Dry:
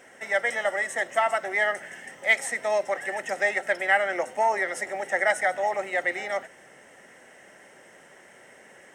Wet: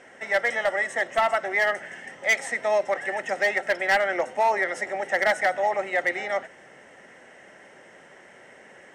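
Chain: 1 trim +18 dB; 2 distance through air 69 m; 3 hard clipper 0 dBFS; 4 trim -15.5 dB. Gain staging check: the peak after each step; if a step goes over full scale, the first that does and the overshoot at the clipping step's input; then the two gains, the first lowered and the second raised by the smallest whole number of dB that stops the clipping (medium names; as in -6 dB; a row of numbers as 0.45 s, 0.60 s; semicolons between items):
+9.5 dBFS, +9.0 dBFS, 0.0 dBFS, -15.5 dBFS; step 1, 9.0 dB; step 1 +9 dB, step 4 -6.5 dB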